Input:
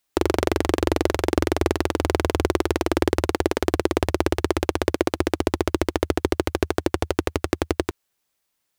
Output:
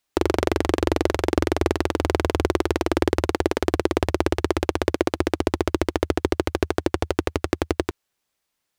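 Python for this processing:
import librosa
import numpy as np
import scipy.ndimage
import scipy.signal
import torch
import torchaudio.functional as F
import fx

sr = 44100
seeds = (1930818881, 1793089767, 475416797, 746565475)

y = fx.high_shelf(x, sr, hz=9500.0, db=-6.5)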